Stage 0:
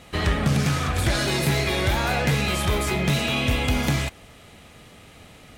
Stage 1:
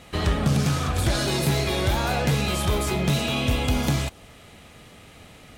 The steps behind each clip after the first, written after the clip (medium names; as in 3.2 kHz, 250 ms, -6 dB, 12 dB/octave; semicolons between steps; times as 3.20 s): dynamic bell 2 kHz, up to -6 dB, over -43 dBFS, Q 1.7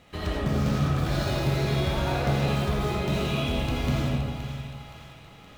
median filter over 5 samples; on a send: two-band feedback delay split 820 Hz, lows 152 ms, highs 520 ms, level -10 dB; on the sum: algorithmic reverb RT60 1.8 s, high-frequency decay 0.3×, pre-delay 40 ms, DRR -2 dB; trim -8 dB